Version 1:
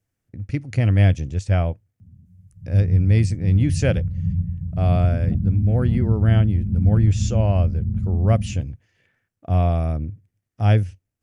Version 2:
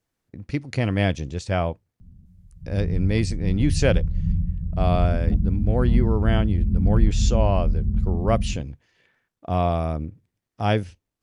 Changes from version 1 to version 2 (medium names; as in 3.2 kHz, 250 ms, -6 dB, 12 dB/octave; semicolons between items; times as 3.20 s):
background: remove high-pass 100 Hz 12 dB/octave; master: add fifteen-band graphic EQ 100 Hz -10 dB, 400 Hz +3 dB, 1 kHz +7 dB, 4 kHz +7 dB